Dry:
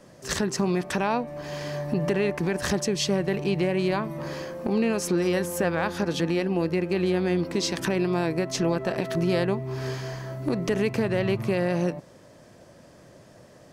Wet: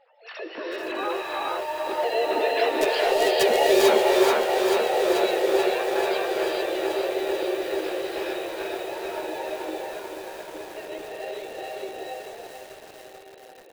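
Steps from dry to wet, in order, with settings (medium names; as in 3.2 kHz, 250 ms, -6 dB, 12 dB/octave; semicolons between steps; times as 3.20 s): formants replaced by sine waves; Doppler pass-by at 3.36 s, 8 m/s, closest 6.6 m; bass shelf 460 Hz -7.5 dB; in parallel at -2 dB: compression 5:1, threshold -42 dBFS, peak gain reduction 15.5 dB; on the sum: integer overflow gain 19 dB; harmony voices +3 st -15 dB, +7 st -1 dB; doubling 13 ms -9 dB; echo that smears into a reverb 1411 ms, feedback 45%, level -13 dB; gated-style reverb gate 480 ms rising, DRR -3 dB; bit-crushed delay 438 ms, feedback 80%, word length 7-bit, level -6 dB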